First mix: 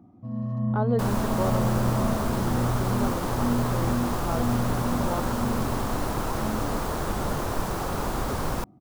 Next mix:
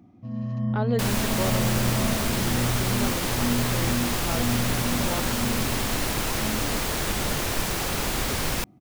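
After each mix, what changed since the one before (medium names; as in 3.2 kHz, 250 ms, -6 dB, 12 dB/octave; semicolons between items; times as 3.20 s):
master: add resonant high shelf 1.6 kHz +9.5 dB, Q 1.5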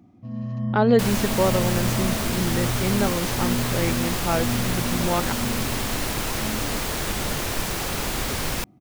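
speech +9.0 dB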